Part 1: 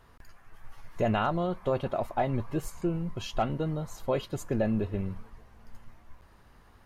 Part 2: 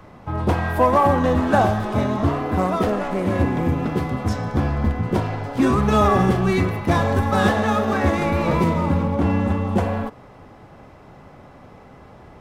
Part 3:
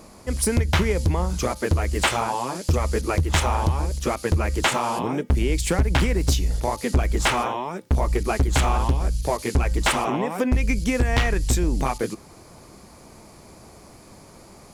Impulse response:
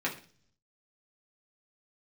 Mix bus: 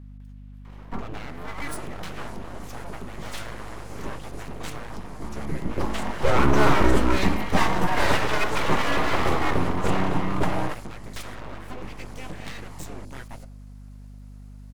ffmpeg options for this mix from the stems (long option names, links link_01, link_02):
-filter_complex "[0:a]volume=-10dB,asplit=3[link_01][link_02][link_03];[link_02]volume=-14.5dB[link_04];[1:a]aecho=1:1:1:0.63,aphaser=in_gain=1:out_gain=1:delay=3.5:decay=0.41:speed=0.18:type=sinusoidal,adelay=650,volume=-2dB[link_05];[2:a]adelay=1300,volume=-15dB,asplit=2[link_06][link_07];[link_07]volume=-15.5dB[link_08];[link_03]apad=whole_len=575610[link_09];[link_05][link_09]sidechaincompress=threshold=-52dB:ratio=10:attack=6.2:release=966[link_10];[3:a]atrim=start_sample=2205[link_11];[link_04][link_08]amix=inputs=2:normalize=0[link_12];[link_12][link_11]afir=irnorm=-1:irlink=0[link_13];[link_01][link_10][link_06][link_13]amix=inputs=4:normalize=0,highpass=63,aeval=exprs='abs(val(0))':channel_layout=same,aeval=exprs='val(0)+0.00891*(sin(2*PI*50*n/s)+sin(2*PI*2*50*n/s)/2+sin(2*PI*3*50*n/s)/3+sin(2*PI*4*50*n/s)/4+sin(2*PI*5*50*n/s)/5)':channel_layout=same"